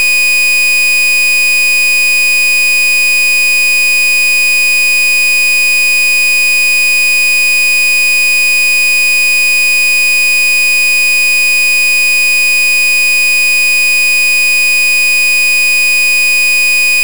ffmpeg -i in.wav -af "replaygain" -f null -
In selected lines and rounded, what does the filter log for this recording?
track_gain = -9.5 dB
track_peak = 0.273